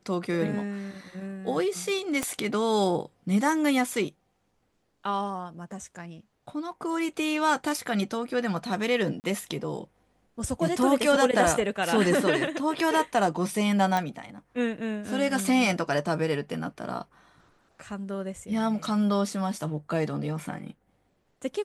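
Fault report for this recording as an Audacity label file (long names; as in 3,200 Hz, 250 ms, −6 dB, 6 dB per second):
2.230000	2.230000	click −14 dBFS
9.200000	9.240000	drop-out 39 ms
13.970000	13.970000	click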